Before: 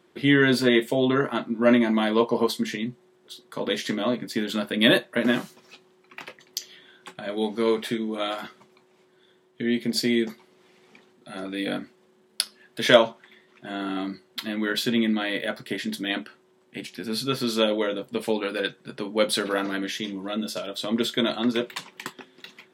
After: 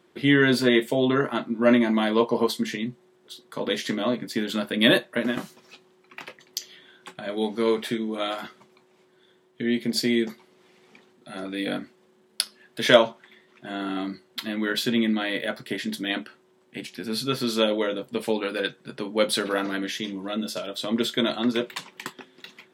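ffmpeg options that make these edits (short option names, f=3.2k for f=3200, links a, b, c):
-filter_complex "[0:a]asplit=2[a][b];[a]atrim=end=5.37,asetpts=PTS-STARTPTS,afade=t=out:st=5.04:d=0.33:c=qsin:silence=0.375837[c];[b]atrim=start=5.37,asetpts=PTS-STARTPTS,afade=t=in:d=0.004:c=hsin:silence=0.375837[d];[c][d]concat=n=2:v=0:a=1"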